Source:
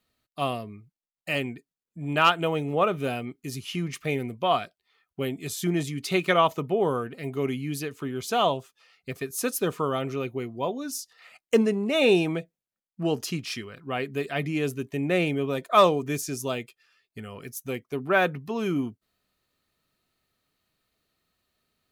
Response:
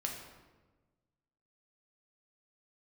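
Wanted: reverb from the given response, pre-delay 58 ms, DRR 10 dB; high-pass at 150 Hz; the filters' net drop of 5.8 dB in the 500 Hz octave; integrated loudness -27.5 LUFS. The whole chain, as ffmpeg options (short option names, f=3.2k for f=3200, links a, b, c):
-filter_complex "[0:a]highpass=150,equalizer=f=500:t=o:g=-7.5,asplit=2[a][b];[1:a]atrim=start_sample=2205,adelay=58[c];[b][c]afir=irnorm=-1:irlink=0,volume=-11.5dB[d];[a][d]amix=inputs=2:normalize=0,volume=1.5dB"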